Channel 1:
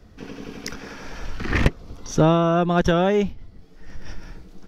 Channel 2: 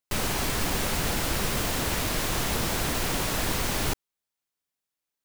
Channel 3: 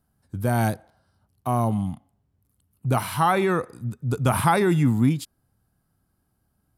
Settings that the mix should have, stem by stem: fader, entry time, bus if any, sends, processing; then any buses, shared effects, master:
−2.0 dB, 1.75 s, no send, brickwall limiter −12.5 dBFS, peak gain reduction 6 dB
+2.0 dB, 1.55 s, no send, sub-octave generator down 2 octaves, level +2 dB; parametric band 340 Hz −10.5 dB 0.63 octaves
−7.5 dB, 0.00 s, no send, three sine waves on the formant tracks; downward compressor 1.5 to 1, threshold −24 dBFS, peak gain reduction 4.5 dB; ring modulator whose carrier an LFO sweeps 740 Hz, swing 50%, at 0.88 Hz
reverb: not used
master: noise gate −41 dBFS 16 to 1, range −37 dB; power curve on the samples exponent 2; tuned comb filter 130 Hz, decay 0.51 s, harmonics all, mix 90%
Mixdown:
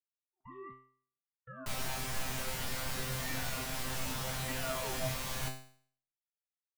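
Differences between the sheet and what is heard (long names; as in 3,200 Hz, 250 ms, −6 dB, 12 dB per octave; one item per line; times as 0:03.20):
stem 1: muted
stem 2: missing sub-octave generator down 2 octaves, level +2 dB
master: missing power curve on the samples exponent 2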